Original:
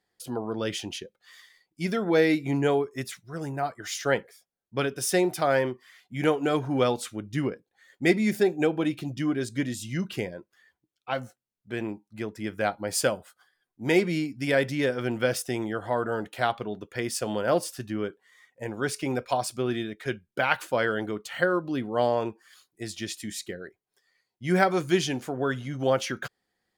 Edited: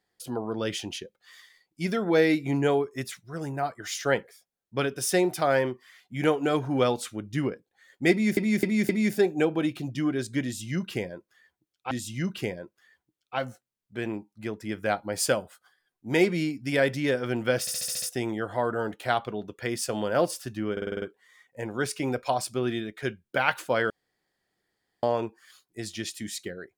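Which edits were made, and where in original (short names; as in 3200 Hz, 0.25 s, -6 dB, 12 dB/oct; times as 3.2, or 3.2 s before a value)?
8.11–8.37 loop, 4 plays
9.66–11.13 loop, 2 plays
15.35 stutter 0.07 s, 7 plays
18.05 stutter 0.05 s, 7 plays
20.93–22.06 room tone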